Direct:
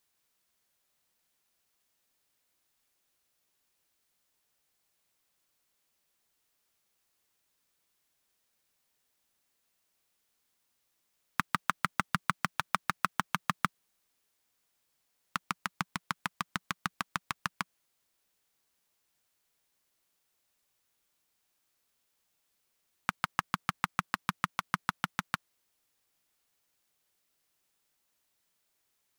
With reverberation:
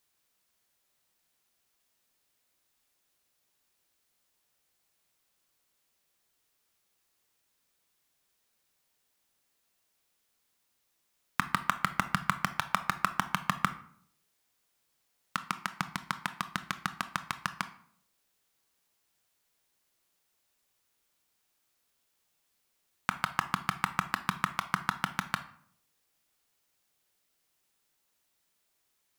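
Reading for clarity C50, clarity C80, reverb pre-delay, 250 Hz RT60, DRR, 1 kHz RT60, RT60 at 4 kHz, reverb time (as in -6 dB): 13.5 dB, 17.5 dB, 20 ms, no reading, 10.0 dB, 0.60 s, 0.40 s, 0.60 s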